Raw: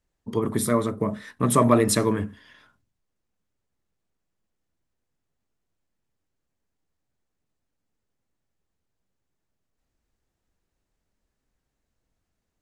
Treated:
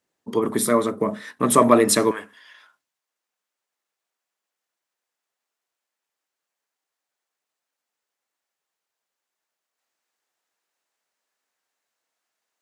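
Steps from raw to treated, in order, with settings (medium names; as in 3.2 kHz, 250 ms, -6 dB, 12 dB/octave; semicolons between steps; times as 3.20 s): high-pass 240 Hz 12 dB/octave, from 2.11 s 770 Hz; trim +4.5 dB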